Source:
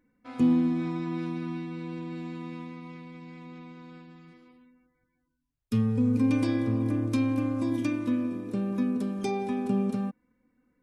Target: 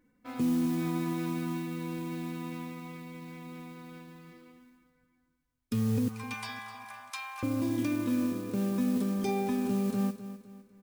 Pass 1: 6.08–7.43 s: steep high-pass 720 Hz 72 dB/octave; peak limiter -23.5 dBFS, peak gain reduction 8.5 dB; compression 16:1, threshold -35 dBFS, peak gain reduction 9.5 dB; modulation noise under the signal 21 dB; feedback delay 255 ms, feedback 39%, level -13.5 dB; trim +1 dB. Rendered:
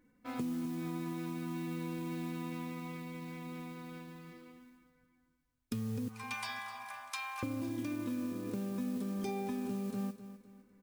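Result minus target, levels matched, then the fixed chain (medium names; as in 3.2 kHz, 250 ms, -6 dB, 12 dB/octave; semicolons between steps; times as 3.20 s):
compression: peak gain reduction +9.5 dB
6.08–7.43 s: steep high-pass 720 Hz 72 dB/octave; peak limiter -23.5 dBFS, peak gain reduction 8.5 dB; modulation noise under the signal 21 dB; feedback delay 255 ms, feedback 39%, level -13.5 dB; trim +1 dB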